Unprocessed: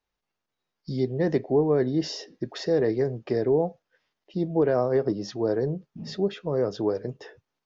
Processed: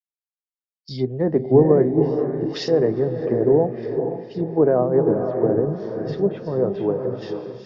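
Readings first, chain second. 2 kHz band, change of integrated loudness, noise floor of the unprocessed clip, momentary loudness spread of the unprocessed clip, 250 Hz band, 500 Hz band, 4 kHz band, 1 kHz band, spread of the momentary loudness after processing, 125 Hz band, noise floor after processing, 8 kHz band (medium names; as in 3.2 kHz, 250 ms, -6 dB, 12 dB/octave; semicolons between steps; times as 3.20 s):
-0.5 dB, +6.0 dB, -84 dBFS, 12 LU, +6.0 dB, +6.5 dB, +1.0 dB, +5.5 dB, 11 LU, +6.0 dB, under -85 dBFS, no reading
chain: echo that smears into a reverb 484 ms, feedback 45%, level -3 dB; low-pass that closes with the level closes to 1.1 kHz, closed at -20.5 dBFS; three bands expanded up and down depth 100%; trim +4.5 dB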